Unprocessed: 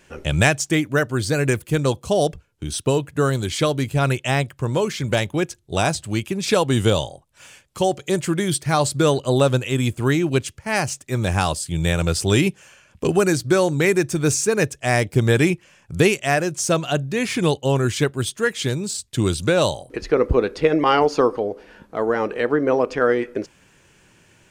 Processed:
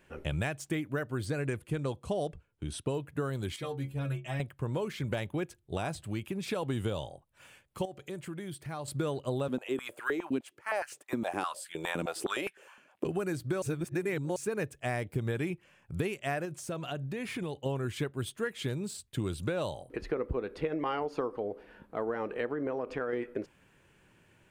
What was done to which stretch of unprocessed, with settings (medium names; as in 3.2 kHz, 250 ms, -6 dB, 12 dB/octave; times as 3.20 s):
1.26–2.94 s: low-pass 11 kHz 24 dB/octave
3.56–4.40 s: inharmonic resonator 66 Hz, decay 0.33 s, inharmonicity 0.008
5.77–6.63 s: compression 1.5:1, threshold -25 dBFS
7.85–8.88 s: compression 2.5:1, threshold -33 dBFS
9.48–13.05 s: step-sequenced high-pass 9.7 Hz 250–1600 Hz
13.62–14.36 s: reverse
16.45–17.66 s: compression 5:1, threshold -24 dBFS
22.46–23.13 s: compression, threshold -19 dBFS
whole clip: peaking EQ 6 kHz -11 dB 1.2 oct; compression, threshold -21 dBFS; trim -8 dB